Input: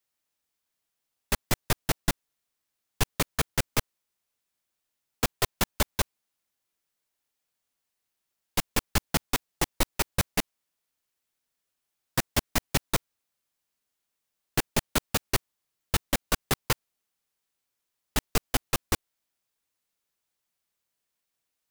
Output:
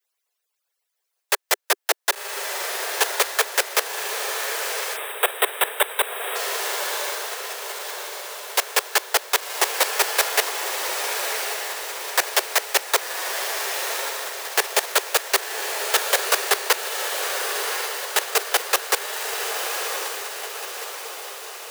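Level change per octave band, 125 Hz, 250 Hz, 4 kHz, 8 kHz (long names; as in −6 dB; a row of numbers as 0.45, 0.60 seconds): below −40 dB, −9.0 dB, +10.0 dB, +10.0 dB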